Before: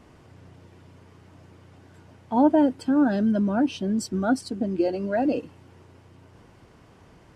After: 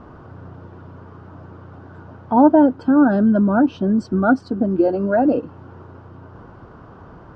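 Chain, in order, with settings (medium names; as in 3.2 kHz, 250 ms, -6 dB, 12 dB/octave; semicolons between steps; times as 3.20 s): resonant high shelf 1.7 kHz -6.5 dB, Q 3; in parallel at -1 dB: compression, threshold -34 dBFS, peak gain reduction 19.5 dB; on the sum: distance through air 190 m; trim +5.5 dB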